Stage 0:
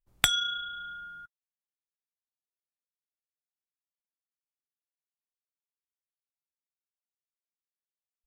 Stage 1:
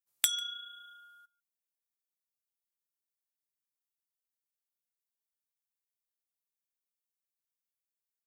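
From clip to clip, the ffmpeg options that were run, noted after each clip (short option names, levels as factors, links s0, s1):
-filter_complex "[0:a]aderivative,asplit=2[s0][s1];[s1]adelay=145.8,volume=0.0631,highshelf=f=4000:g=-3.28[s2];[s0][s2]amix=inputs=2:normalize=0"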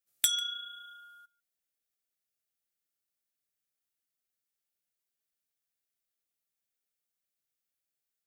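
-af "asoftclip=type=tanh:threshold=0.15,asuperstop=centerf=980:order=4:qfactor=2.6,volume=1.5"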